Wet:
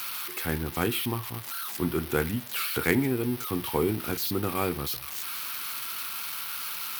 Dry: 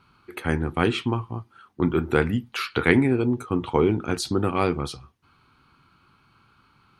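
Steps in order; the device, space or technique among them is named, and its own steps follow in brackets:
budget class-D amplifier (gap after every zero crossing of 0.072 ms; spike at every zero crossing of −13.5 dBFS)
level −6 dB

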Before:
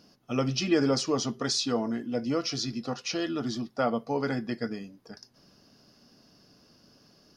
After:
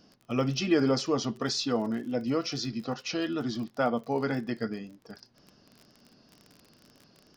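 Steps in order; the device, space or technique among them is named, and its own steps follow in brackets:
lo-fi chain (low-pass filter 5,100 Hz 12 dB per octave; tape wow and flutter; surface crackle 37 per second −39 dBFS)

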